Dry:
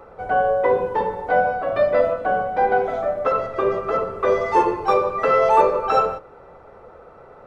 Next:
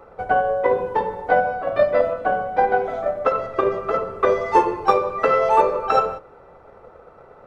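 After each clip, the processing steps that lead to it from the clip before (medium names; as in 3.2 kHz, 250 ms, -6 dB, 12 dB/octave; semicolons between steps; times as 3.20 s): transient shaper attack +7 dB, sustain +1 dB; trim -2.5 dB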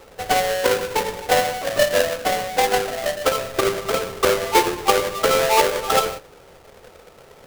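square wave that keeps the level; trim -4 dB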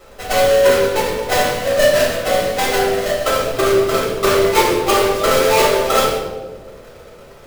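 reverberation RT60 1.4 s, pre-delay 3 ms, DRR -6.5 dB; trim -4 dB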